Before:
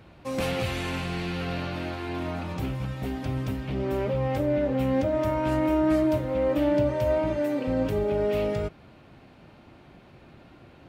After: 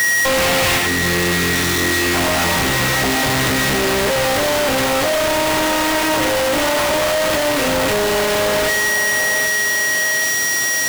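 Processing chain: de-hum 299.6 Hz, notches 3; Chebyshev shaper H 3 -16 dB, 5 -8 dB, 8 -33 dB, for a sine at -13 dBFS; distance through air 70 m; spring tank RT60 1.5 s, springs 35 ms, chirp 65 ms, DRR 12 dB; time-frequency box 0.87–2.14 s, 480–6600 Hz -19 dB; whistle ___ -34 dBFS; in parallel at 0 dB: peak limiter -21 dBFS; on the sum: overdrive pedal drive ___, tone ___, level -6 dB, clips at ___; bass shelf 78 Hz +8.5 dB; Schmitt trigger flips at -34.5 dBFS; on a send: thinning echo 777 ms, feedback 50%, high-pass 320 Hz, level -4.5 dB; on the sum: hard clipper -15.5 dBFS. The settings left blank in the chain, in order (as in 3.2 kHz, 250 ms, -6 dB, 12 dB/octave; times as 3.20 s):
1.9 kHz, 30 dB, 7.7 kHz, -8.5 dBFS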